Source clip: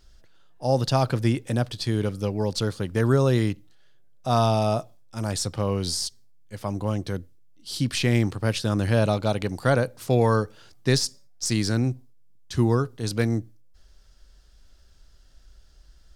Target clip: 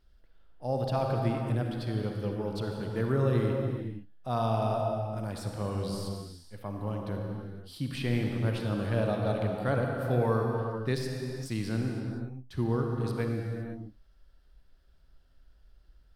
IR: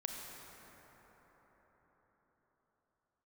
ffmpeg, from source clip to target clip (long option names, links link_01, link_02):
-filter_complex "[0:a]equalizer=frequency=6600:width=1.2:gain=-15[link_01];[1:a]atrim=start_sample=2205,afade=type=out:start_time=0.44:duration=0.01,atrim=end_sample=19845,asetrate=33075,aresample=44100[link_02];[link_01][link_02]afir=irnorm=-1:irlink=0,volume=-7.5dB"